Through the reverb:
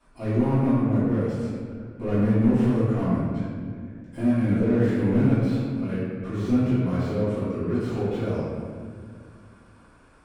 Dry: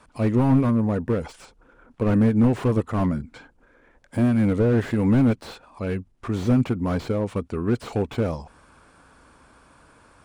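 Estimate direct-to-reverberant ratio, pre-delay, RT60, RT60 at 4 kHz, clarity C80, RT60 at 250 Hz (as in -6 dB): -13.0 dB, 3 ms, 2.0 s, 1.2 s, 0.0 dB, 2.9 s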